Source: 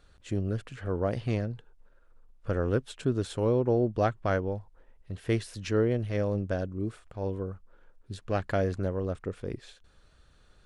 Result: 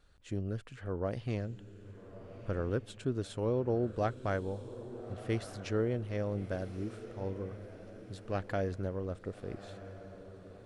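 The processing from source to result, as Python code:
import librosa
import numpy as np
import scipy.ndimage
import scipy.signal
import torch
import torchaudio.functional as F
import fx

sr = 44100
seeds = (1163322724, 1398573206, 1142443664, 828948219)

y = fx.vibrato(x, sr, rate_hz=2.6, depth_cents=20.0)
y = fx.echo_diffused(y, sr, ms=1270, feedback_pct=45, wet_db=-13.0)
y = F.gain(torch.from_numpy(y), -6.0).numpy()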